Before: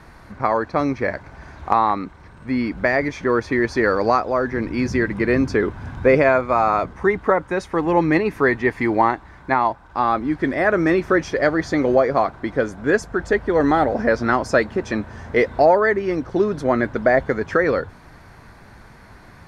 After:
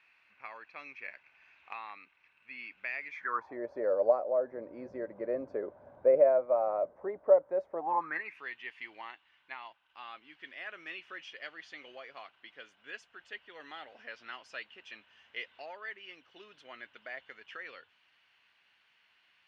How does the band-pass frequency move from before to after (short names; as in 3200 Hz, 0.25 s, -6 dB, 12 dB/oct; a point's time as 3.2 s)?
band-pass, Q 10
3.09 s 2600 Hz
3.59 s 580 Hz
7.74 s 580 Hz
8.41 s 2900 Hz